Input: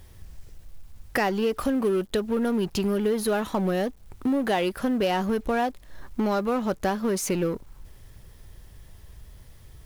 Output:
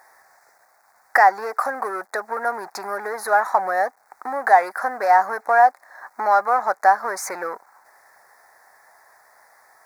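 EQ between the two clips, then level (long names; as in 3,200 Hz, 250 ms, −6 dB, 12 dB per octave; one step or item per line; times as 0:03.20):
high-pass with resonance 760 Hz, resonance Q 4.1
Butterworth band-reject 3,000 Hz, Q 1
parametric band 1,800 Hz +13.5 dB 1.6 octaves
−1.0 dB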